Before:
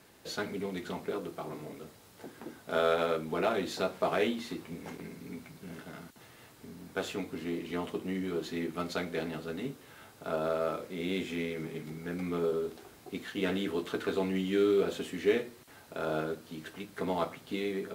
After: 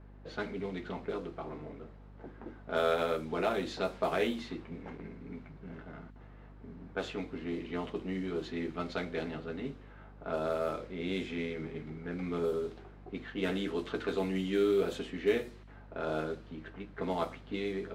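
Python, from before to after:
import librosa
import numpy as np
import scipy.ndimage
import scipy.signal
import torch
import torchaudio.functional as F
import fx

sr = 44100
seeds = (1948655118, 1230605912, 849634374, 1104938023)

y = fx.env_lowpass(x, sr, base_hz=1300.0, full_db=-25.5)
y = fx.add_hum(y, sr, base_hz=50, snr_db=17)
y = y * 10.0 ** (-1.5 / 20.0)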